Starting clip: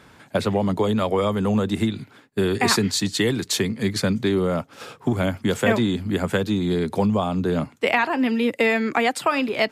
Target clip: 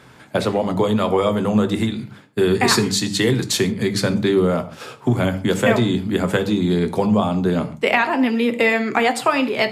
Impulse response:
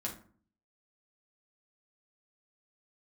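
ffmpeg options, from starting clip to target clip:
-filter_complex "[0:a]bandreject=f=50:t=h:w=6,bandreject=f=100:t=h:w=6,bandreject=f=150:t=h:w=6,bandreject=f=200:t=h:w=6,asplit=2[a][b];[1:a]atrim=start_sample=2205,atrim=end_sample=3969,asetrate=26460,aresample=44100[c];[b][c]afir=irnorm=-1:irlink=0,volume=-8dB[d];[a][d]amix=inputs=2:normalize=0"

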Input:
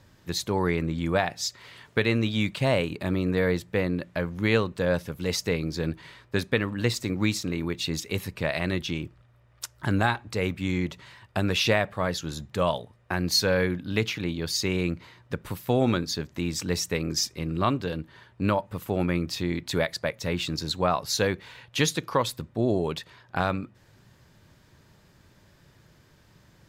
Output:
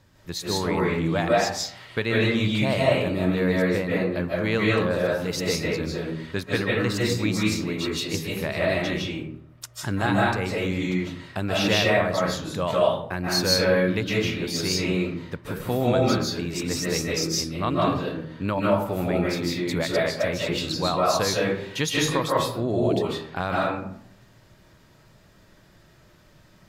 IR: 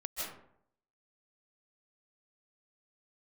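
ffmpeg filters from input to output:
-filter_complex "[1:a]atrim=start_sample=2205[a];[0:a][a]afir=irnorm=-1:irlink=0,volume=1.5dB"

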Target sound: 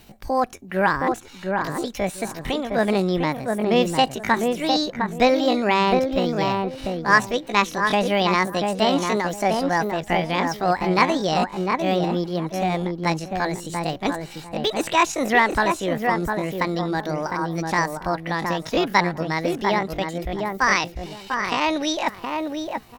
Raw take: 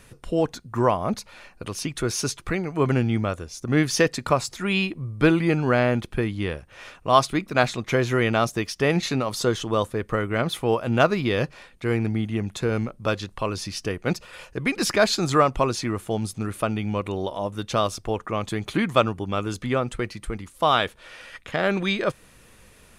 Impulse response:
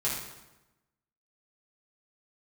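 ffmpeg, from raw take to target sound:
-filter_complex "[0:a]asplit=2[a][b];[b]adelay=704,lowpass=f=870:p=1,volume=-3dB,asplit=2[c][d];[d]adelay=704,lowpass=f=870:p=1,volume=0.23,asplit=2[e][f];[f]adelay=704,lowpass=f=870:p=1,volume=0.23[g];[a][c][e][g]amix=inputs=4:normalize=0,acrossover=split=3700[h][i];[i]acompressor=threshold=-41dB:ratio=4:attack=1:release=60[j];[h][j]amix=inputs=2:normalize=0,asetrate=70004,aresample=44100,atempo=0.629961,volume=1dB"

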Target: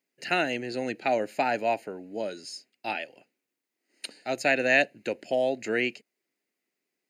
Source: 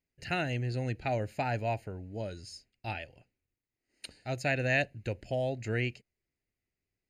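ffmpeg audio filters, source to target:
-af "highpass=f=230:w=0.5412,highpass=f=230:w=1.3066,volume=7dB"

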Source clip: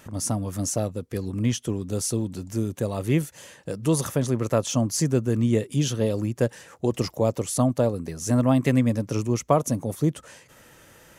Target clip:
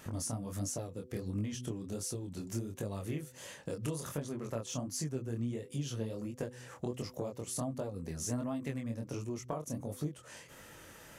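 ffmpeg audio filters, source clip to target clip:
-af "bandreject=f=125.6:t=h:w=4,bandreject=f=251.2:t=h:w=4,bandreject=f=376.8:t=h:w=4,bandreject=f=502.4:t=h:w=4,acompressor=threshold=-33dB:ratio=10,flanger=delay=19.5:depth=7.2:speed=1.4,volume=1.5dB"

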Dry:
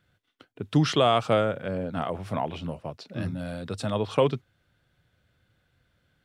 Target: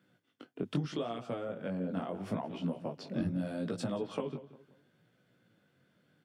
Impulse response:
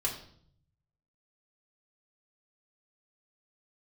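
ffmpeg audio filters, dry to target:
-filter_complex "[0:a]acrossover=split=140[a][b];[a]acrusher=bits=4:mix=0:aa=0.5[c];[c][b]amix=inputs=2:normalize=0,acompressor=threshold=-35dB:ratio=16,equalizer=f=220:t=o:w=2.5:g=10,asplit=2[d][e];[e]adelay=177,lowpass=f=3.4k:p=1,volume=-15dB,asplit=2[f][g];[g]adelay=177,lowpass=f=3.4k:p=1,volume=0.36,asplit=2[h][i];[i]adelay=177,lowpass=f=3.4k:p=1,volume=0.36[j];[f][h][j]amix=inputs=3:normalize=0[k];[d][k]amix=inputs=2:normalize=0,flanger=delay=16:depth=6:speed=0.76,bandreject=f=3.9k:w=15"

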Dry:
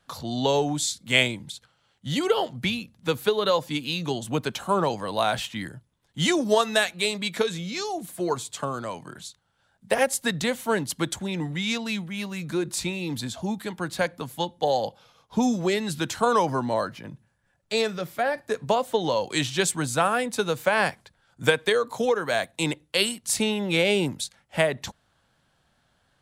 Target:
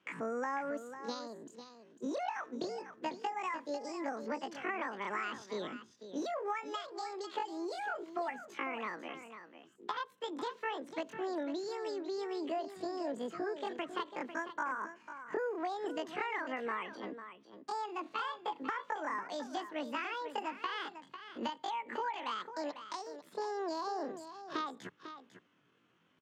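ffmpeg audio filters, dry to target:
-filter_complex "[0:a]acompressor=threshold=-31dB:ratio=8,highpass=f=67:w=0.5412,highpass=f=67:w=1.3066,asetrate=85689,aresample=44100,atempo=0.514651,lowpass=2.7k,asplit=2[a][b];[b]aecho=0:1:498:0.282[c];[a][c]amix=inputs=2:normalize=0,volume=-2.5dB"

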